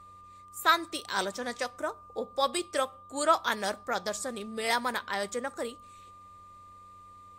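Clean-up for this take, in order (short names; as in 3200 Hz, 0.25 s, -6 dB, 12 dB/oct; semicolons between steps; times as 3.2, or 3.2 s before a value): de-hum 93.6 Hz, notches 6; notch 1200 Hz, Q 30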